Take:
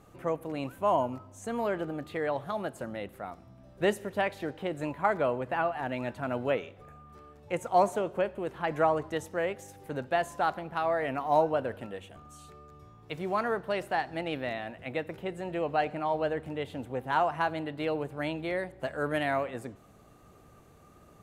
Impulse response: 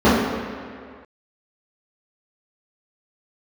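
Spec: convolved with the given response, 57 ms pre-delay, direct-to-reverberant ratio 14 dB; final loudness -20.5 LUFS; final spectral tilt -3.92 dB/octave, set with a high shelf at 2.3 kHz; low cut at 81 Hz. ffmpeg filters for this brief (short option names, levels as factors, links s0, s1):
-filter_complex "[0:a]highpass=81,highshelf=f=2300:g=3,asplit=2[s0][s1];[1:a]atrim=start_sample=2205,adelay=57[s2];[s1][s2]afir=irnorm=-1:irlink=0,volume=0.00841[s3];[s0][s3]amix=inputs=2:normalize=0,volume=3.35"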